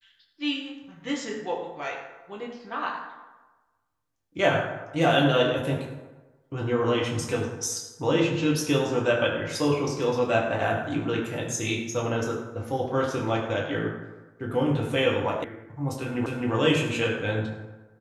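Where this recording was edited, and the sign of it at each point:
15.44 s: sound stops dead
16.26 s: repeat of the last 0.26 s

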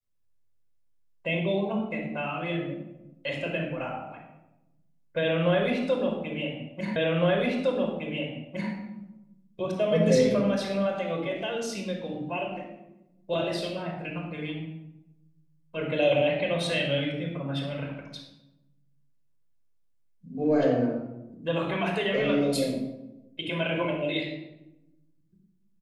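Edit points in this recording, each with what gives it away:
6.96 s: repeat of the last 1.76 s

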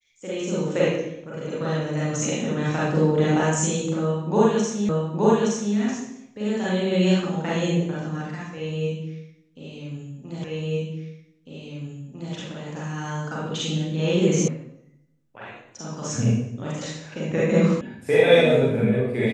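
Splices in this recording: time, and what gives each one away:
4.89 s: repeat of the last 0.87 s
10.44 s: repeat of the last 1.9 s
14.48 s: sound stops dead
17.81 s: sound stops dead

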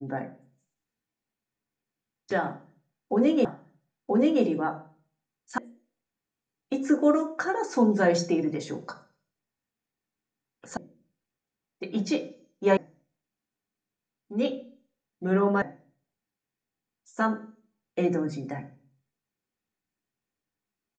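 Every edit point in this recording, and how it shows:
3.45 s: repeat of the last 0.98 s
5.58 s: sound stops dead
10.77 s: sound stops dead
12.77 s: sound stops dead
15.62 s: sound stops dead

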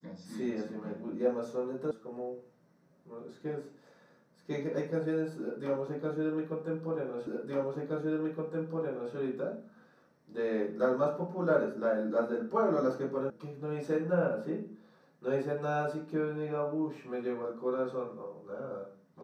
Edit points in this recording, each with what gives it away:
1.91 s: sound stops dead
7.27 s: repeat of the last 1.87 s
13.30 s: sound stops dead

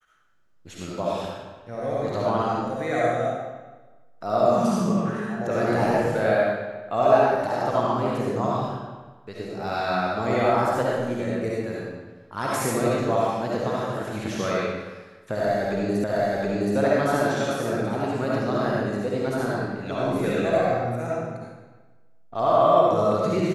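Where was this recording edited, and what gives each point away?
16.04 s: repeat of the last 0.72 s

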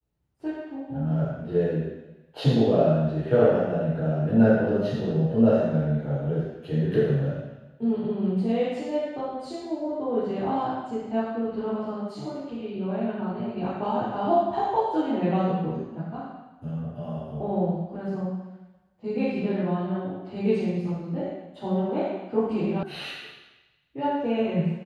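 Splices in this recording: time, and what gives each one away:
22.83 s: sound stops dead

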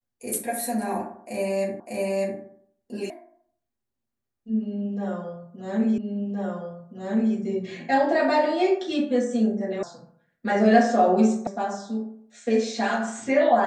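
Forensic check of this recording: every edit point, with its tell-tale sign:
1.80 s: repeat of the last 0.6 s
3.10 s: sound stops dead
5.98 s: repeat of the last 1.37 s
9.83 s: sound stops dead
11.47 s: sound stops dead

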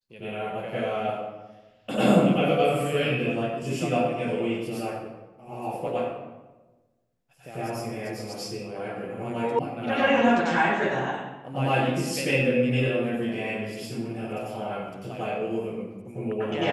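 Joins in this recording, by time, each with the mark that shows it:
9.59 s: sound stops dead

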